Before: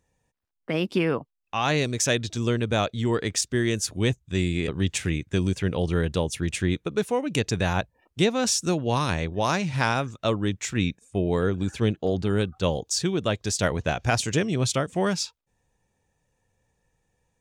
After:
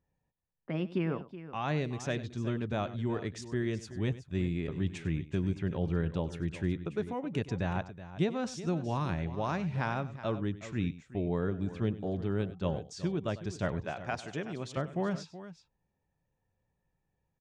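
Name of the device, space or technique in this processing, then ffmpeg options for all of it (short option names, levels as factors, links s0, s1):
through cloth: -filter_complex "[0:a]asettb=1/sr,asplit=3[s0][s1][s2];[s0]atrim=end=13.854[s3];[s1]atrim=start=13.85:end=14.77,asetpts=PTS-STARTPTS,afade=t=in:d=0.004:c=qsin,afade=t=out:st=0.916:d=0.004:c=qsin,highpass=f=430:p=1[s4];[s2]atrim=start=14.766[s5];[s3][s4]acrossfade=d=0.004:c1=hsin:c2=qsin[s6];[s6][s5]acrossfade=d=0.004:c1=qsin:c2=hsin,lowpass=8500,equalizer=f=160:t=o:w=0.34:g=4.5,highshelf=f=3400:g=-16.5,bandreject=f=480:w=12,aecho=1:1:97|373:0.15|0.2,volume=0.398"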